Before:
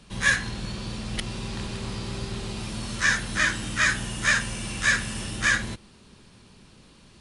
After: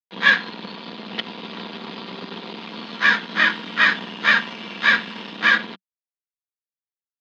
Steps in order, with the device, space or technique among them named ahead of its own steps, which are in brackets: blown loudspeaker (crossover distortion -34.5 dBFS; cabinet simulation 160–4700 Hz, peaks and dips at 190 Hz +5 dB, 330 Hz +3 dB, 970 Hz +5 dB, 3.4 kHz +4 dB); three-band isolator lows -16 dB, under 170 Hz, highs -24 dB, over 5.4 kHz; bass shelf 170 Hz -5.5 dB; band-stop 5.6 kHz, Q 15; comb 4.3 ms, depth 34%; trim +7 dB

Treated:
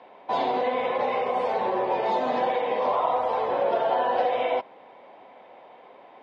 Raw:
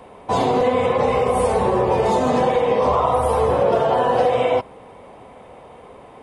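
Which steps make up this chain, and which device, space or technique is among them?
phone earpiece (cabinet simulation 400–4100 Hz, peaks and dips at 450 Hz -7 dB, 1.2 kHz -7 dB, 2.8 kHz -3 dB); trim -3 dB

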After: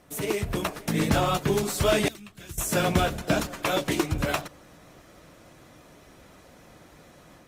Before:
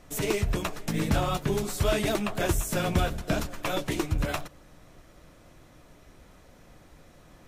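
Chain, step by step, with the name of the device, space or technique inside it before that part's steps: 2.08–2.58 s: amplifier tone stack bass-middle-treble 6-0-2; video call (high-pass 130 Hz 6 dB/octave; level rider gain up to 4.5 dB; Opus 32 kbps 48 kHz)

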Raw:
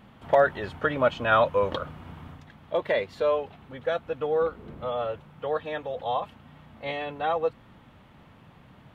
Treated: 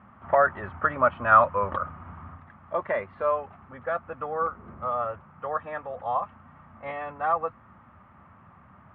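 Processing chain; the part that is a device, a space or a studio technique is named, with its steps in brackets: bass cabinet (cabinet simulation 66–2000 Hz, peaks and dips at 81 Hz +5 dB, 140 Hz -6 dB, 300 Hz -7 dB, 460 Hz -9 dB, 1.2 kHz +10 dB)

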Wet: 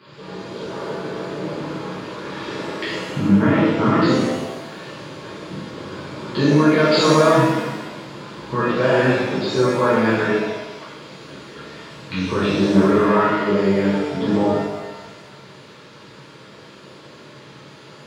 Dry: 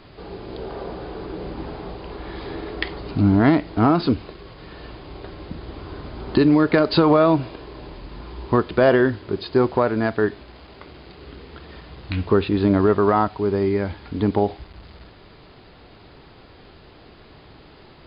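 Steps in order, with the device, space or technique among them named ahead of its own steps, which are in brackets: PA system with an anti-feedback notch (high-pass 120 Hz 24 dB/octave; Butterworth band-stop 720 Hz, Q 4; peak limiter -11 dBFS, peak gain reduction 8 dB); 2.92–4.02 s: steep low-pass 3.4 kHz 48 dB/octave; pitch-shifted reverb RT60 1.1 s, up +7 st, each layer -8 dB, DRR -10 dB; trim -4.5 dB

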